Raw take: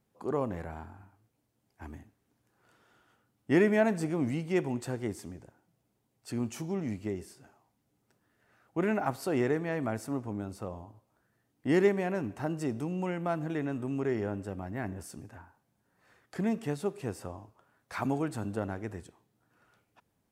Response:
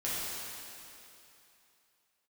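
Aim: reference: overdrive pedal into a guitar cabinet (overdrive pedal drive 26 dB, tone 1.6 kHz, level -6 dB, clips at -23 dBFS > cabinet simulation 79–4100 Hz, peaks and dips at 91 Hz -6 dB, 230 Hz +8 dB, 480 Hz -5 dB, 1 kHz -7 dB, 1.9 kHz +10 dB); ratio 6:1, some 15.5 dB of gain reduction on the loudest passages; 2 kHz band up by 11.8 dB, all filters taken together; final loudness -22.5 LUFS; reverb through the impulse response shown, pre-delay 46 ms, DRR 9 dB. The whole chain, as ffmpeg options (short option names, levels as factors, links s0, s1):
-filter_complex "[0:a]equalizer=f=2000:t=o:g=5.5,acompressor=threshold=0.0158:ratio=6,asplit=2[s0][s1];[1:a]atrim=start_sample=2205,adelay=46[s2];[s1][s2]afir=irnorm=-1:irlink=0,volume=0.168[s3];[s0][s3]amix=inputs=2:normalize=0,asplit=2[s4][s5];[s5]highpass=f=720:p=1,volume=20,asoftclip=type=tanh:threshold=0.0708[s6];[s4][s6]amix=inputs=2:normalize=0,lowpass=f=1600:p=1,volume=0.501,highpass=79,equalizer=f=91:t=q:w=4:g=-6,equalizer=f=230:t=q:w=4:g=8,equalizer=f=480:t=q:w=4:g=-5,equalizer=f=1000:t=q:w=4:g=-7,equalizer=f=1900:t=q:w=4:g=10,lowpass=f=4100:w=0.5412,lowpass=f=4100:w=1.3066,volume=2.99"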